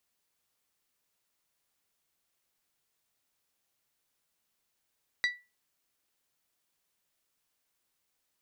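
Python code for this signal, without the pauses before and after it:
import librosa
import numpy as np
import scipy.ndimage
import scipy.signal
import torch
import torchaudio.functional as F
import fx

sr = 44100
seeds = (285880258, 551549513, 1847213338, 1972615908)

y = fx.strike_glass(sr, length_s=0.89, level_db=-22, body='bell', hz=1960.0, decay_s=0.27, tilt_db=7.0, modes=5)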